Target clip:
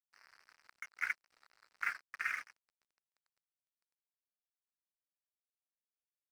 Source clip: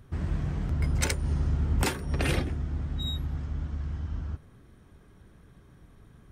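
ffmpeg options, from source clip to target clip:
ffmpeg -i in.wav -af "asuperpass=centerf=1700:order=8:qfactor=1.6,aeval=exprs='sgn(val(0))*max(abs(val(0))-0.00335,0)':channel_layout=same,volume=1.5dB" out.wav

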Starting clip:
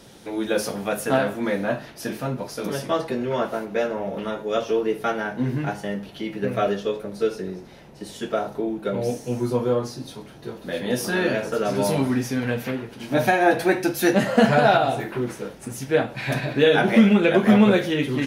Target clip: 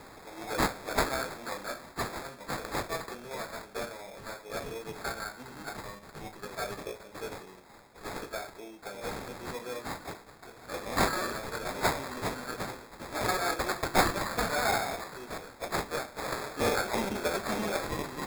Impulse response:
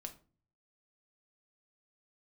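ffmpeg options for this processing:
-af "aderivative,bandreject=frequency=86.66:width_type=h:width=4,bandreject=frequency=173.32:width_type=h:width=4,bandreject=frequency=259.98:width_type=h:width=4,bandreject=frequency=346.64:width_type=h:width=4,bandreject=frequency=433.3:width_type=h:width=4,bandreject=frequency=519.96:width_type=h:width=4,bandreject=frequency=606.62:width_type=h:width=4,bandreject=frequency=693.28:width_type=h:width=4,bandreject=frequency=779.94:width_type=h:width=4,bandreject=frequency=866.6:width_type=h:width=4,bandreject=frequency=953.26:width_type=h:width=4,bandreject=frequency=1039.92:width_type=h:width=4,bandreject=frequency=1126.58:width_type=h:width=4,bandreject=frequency=1213.24:width_type=h:width=4,bandreject=frequency=1299.9:width_type=h:width=4,bandreject=frequency=1386.56:width_type=h:width=4,bandreject=frequency=1473.22:width_type=h:width=4,bandreject=frequency=1559.88:width_type=h:width=4,bandreject=frequency=1646.54:width_type=h:width=4,bandreject=frequency=1733.2:width_type=h:width=4,bandreject=frequency=1819.86:width_type=h:width=4,bandreject=frequency=1906.52:width_type=h:width=4,bandreject=frequency=1993.18:width_type=h:width=4,bandreject=frequency=2079.84:width_type=h:width=4,bandreject=frequency=2166.5:width_type=h:width=4,bandreject=frequency=2253.16:width_type=h:width=4,bandreject=frequency=2339.82:width_type=h:width=4,bandreject=frequency=2426.48:width_type=h:width=4,bandreject=frequency=2513.14:width_type=h:width=4,bandreject=frequency=2599.8:width_type=h:width=4,bandreject=frequency=2686.46:width_type=h:width=4,bandreject=frequency=2773.12:width_type=h:width=4,bandreject=frequency=2859.78:width_type=h:width=4,bandreject=frequency=2946.44:width_type=h:width=4,bandreject=frequency=3033.1:width_type=h:width=4,bandreject=frequency=3119.76:width_type=h:width=4,acrusher=samples=15:mix=1:aa=0.000001,volume=6dB"

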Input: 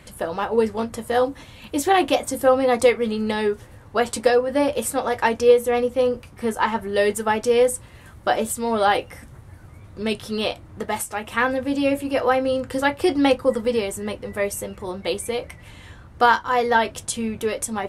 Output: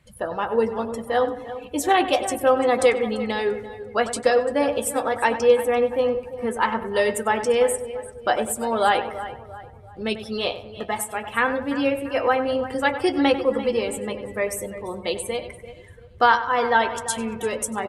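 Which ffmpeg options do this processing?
ffmpeg -i in.wav -filter_complex "[0:a]lowshelf=frequency=420:gain=-4,asplit=2[link_01][link_02];[link_02]aecho=0:1:342|684|1026|1368:0.211|0.0951|0.0428|0.0193[link_03];[link_01][link_03]amix=inputs=2:normalize=0,afftdn=noise_reduction=15:noise_floor=-38,asplit=2[link_04][link_05];[link_05]adelay=96,lowpass=frequency=2300:poles=1,volume=-11dB,asplit=2[link_06][link_07];[link_07]adelay=96,lowpass=frequency=2300:poles=1,volume=0.42,asplit=2[link_08][link_09];[link_09]adelay=96,lowpass=frequency=2300:poles=1,volume=0.42,asplit=2[link_10][link_11];[link_11]adelay=96,lowpass=frequency=2300:poles=1,volume=0.42[link_12];[link_06][link_08][link_10][link_12]amix=inputs=4:normalize=0[link_13];[link_04][link_13]amix=inputs=2:normalize=0" out.wav

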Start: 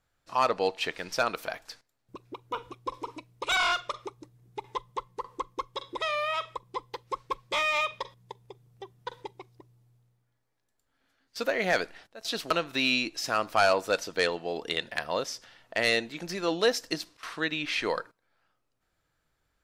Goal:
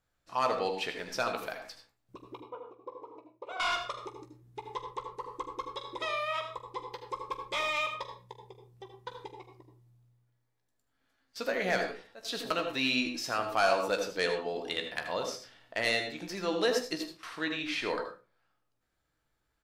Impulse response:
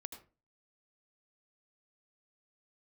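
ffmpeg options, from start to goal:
-filter_complex "[0:a]asettb=1/sr,asplit=3[link_01][link_02][link_03];[link_01]atrim=end=2.414[link_04];[link_02]atrim=start=2.41:end=3.6,asetpts=PTS-STARTPTS,afade=type=in:duration=0.004:curve=qsin,afade=type=out:start_time=1.186:duration=0.004:curve=qsin,bandpass=frequency=550:width_type=q:width=1.8:csg=0[link_05];[link_03]atrim=start=3.596[link_06];[link_04][link_05]acrossfade=duration=0.004:curve1=hsin:curve2=qsin[link_07];[link_07][link_06]acrossfade=duration=0.004:curve1=qsin:curve2=hsin,aecho=1:1:16|45:0.335|0.188[link_08];[1:a]atrim=start_sample=2205[link_09];[link_08][link_09]afir=irnorm=-1:irlink=0"

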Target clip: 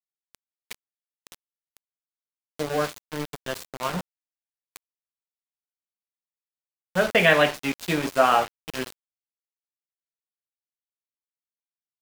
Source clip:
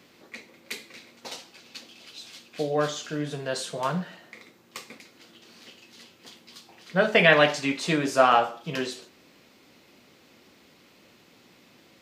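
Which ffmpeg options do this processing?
ffmpeg -i in.wav -af "aeval=exprs='val(0)*gte(abs(val(0)),0.0473)':channel_layout=same,adynamicequalizer=threshold=0.0158:dfrequency=4100:dqfactor=0.7:tfrequency=4100:tqfactor=0.7:attack=5:release=100:ratio=0.375:range=3:mode=cutabove:tftype=highshelf" out.wav

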